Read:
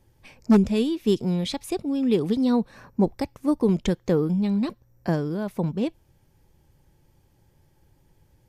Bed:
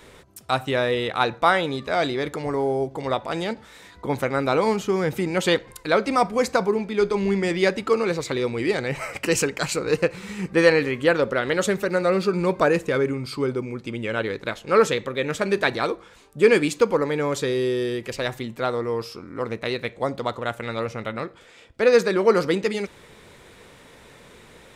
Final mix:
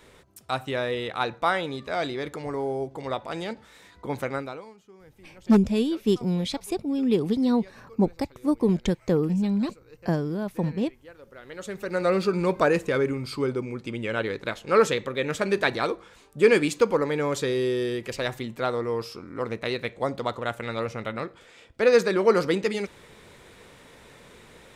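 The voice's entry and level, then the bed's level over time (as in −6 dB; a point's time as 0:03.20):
5.00 s, −1.0 dB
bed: 0:04.35 −5.5 dB
0:04.74 −29 dB
0:11.17 −29 dB
0:12.05 −2 dB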